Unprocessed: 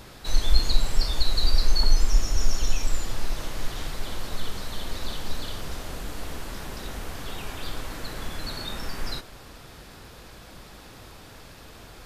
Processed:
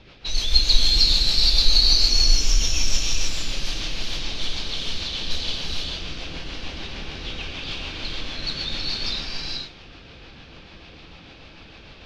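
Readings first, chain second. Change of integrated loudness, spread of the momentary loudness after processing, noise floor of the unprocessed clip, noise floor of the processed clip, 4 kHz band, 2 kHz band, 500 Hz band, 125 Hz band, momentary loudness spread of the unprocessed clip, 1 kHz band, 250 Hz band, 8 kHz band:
+9.0 dB, 17 LU, −46 dBFS, −45 dBFS, +12.5 dB, +6.0 dB, −0.5 dB, +0.5 dB, 21 LU, −1.5 dB, +1.5 dB, +8.0 dB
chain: rotating-speaker cabinet horn 6.7 Hz
flat-topped bell 3,800 Hz +13 dB
low-pass that shuts in the quiet parts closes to 2,000 Hz, open at −16.5 dBFS
reverb whose tail is shaped and stops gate 490 ms rising, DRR −2 dB
level −2 dB

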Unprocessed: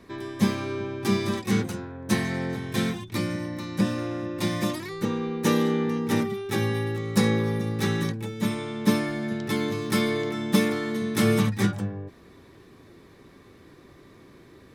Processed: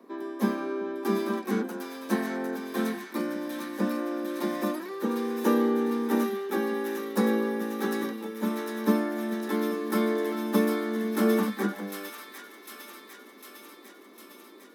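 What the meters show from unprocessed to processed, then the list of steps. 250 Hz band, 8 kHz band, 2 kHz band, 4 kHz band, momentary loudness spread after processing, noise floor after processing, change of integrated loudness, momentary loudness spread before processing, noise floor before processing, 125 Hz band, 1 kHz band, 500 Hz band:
−2.0 dB, −6.5 dB, −3.5 dB, −8.0 dB, 18 LU, −50 dBFS, −2.5 dB, 7 LU, −52 dBFS, below −10 dB, 0.0 dB, 0.0 dB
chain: Butterworth high-pass 210 Hz 72 dB per octave
flat-topped bell 3,900 Hz −11 dB 2.9 octaves
on a send: delay with a high-pass on its return 753 ms, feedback 69%, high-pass 1,900 Hz, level −3 dB
on the sum: dynamic equaliser 1,600 Hz, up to +8 dB, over −57 dBFS, Q 3.9

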